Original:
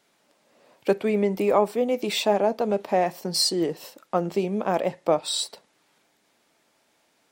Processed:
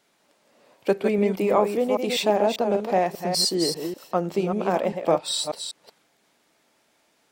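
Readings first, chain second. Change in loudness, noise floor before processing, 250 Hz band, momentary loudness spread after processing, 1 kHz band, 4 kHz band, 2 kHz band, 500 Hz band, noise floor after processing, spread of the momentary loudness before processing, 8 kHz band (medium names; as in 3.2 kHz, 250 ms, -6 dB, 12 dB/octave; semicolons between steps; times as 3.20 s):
+0.5 dB, -67 dBFS, +1.0 dB, 7 LU, +1.0 dB, +1.0 dB, +1.0 dB, +1.0 dB, -66 dBFS, 6 LU, +1.0 dB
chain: chunks repeated in reverse 197 ms, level -6 dB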